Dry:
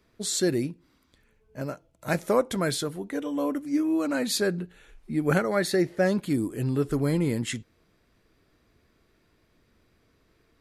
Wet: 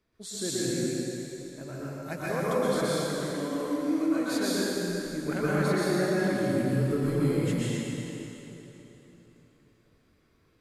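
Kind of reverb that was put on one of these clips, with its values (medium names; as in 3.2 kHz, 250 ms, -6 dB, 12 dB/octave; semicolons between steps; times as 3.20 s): plate-style reverb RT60 3.5 s, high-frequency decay 0.85×, pre-delay 105 ms, DRR -9 dB; trim -11 dB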